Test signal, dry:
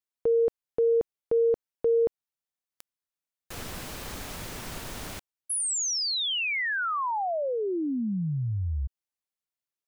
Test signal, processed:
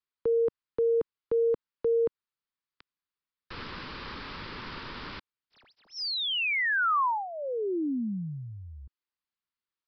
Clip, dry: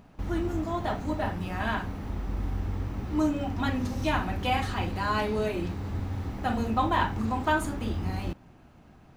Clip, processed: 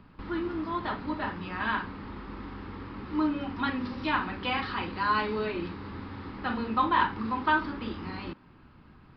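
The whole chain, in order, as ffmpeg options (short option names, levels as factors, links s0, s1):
-filter_complex "[0:a]acrossover=split=190|670|2400[s0][s1][s2][s3];[s0]acompressor=threshold=0.00447:ratio=6:attack=80:release=255[s4];[s2]highpass=f=1000:t=q:w=1.7[s5];[s3]volume=35.5,asoftclip=hard,volume=0.0282[s6];[s4][s1][s5][s6]amix=inputs=4:normalize=0,aresample=11025,aresample=44100"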